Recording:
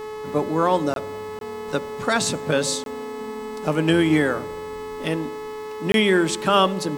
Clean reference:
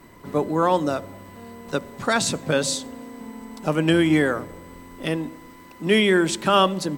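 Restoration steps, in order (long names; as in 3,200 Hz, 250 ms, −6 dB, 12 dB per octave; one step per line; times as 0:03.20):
hum removal 429.2 Hz, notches 32
notch filter 1,100 Hz, Q 30
repair the gap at 0:00.94/0:01.39/0:02.84/0:05.92, 22 ms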